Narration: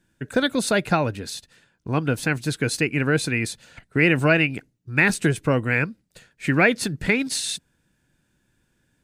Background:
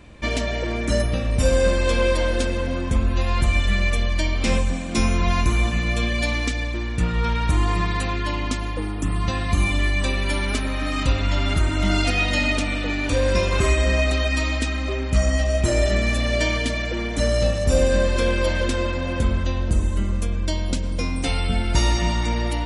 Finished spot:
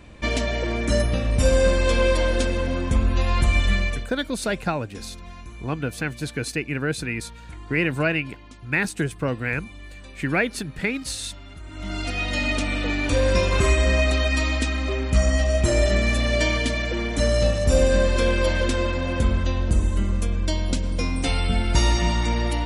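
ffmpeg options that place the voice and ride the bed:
ffmpeg -i stem1.wav -i stem2.wav -filter_complex "[0:a]adelay=3750,volume=-4.5dB[link_01];[1:a]volume=20.5dB,afade=type=out:start_time=3.72:duration=0.39:silence=0.0944061,afade=type=in:start_time=11.63:duration=1.2:silence=0.0944061[link_02];[link_01][link_02]amix=inputs=2:normalize=0" out.wav

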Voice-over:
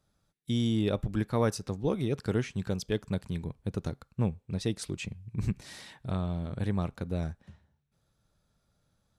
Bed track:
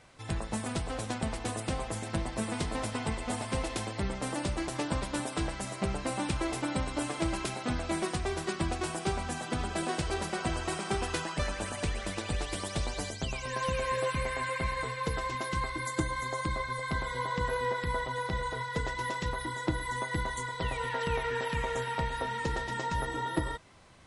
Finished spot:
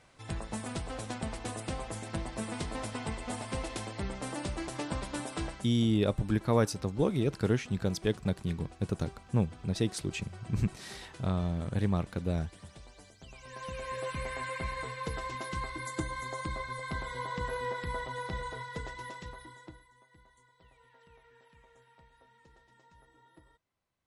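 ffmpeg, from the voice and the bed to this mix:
ffmpeg -i stem1.wav -i stem2.wav -filter_complex "[0:a]adelay=5150,volume=1dB[link_01];[1:a]volume=11.5dB,afade=type=out:start_time=5.45:duration=0.25:silence=0.16788,afade=type=in:start_time=13.19:duration=1.14:silence=0.177828,afade=type=out:start_time=18.35:duration=1.54:silence=0.0562341[link_02];[link_01][link_02]amix=inputs=2:normalize=0" out.wav

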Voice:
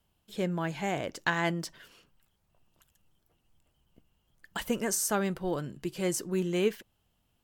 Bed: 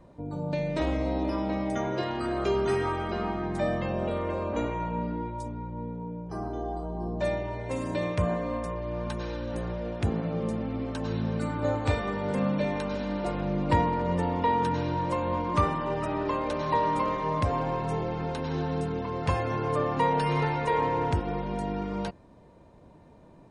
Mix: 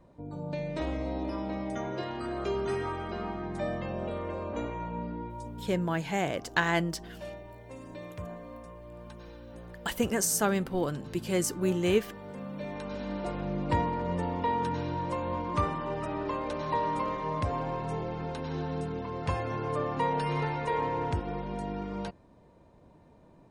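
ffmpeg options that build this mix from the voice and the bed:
ffmpeg -i stem1.wav -i stem2.wav -filter_complex "[0:a]adelay=5300,volume=2dB[link_01];[1:a]volume=4.5dB,afade=type=out:start_time=5.65:duration=0.36:silence=0.375837,afade=type=in:start_time=12.48:duration=0.62:silence=0.334965[link_02];[link_01][link_02]amix=inputs=2:normalize=0" out.wav

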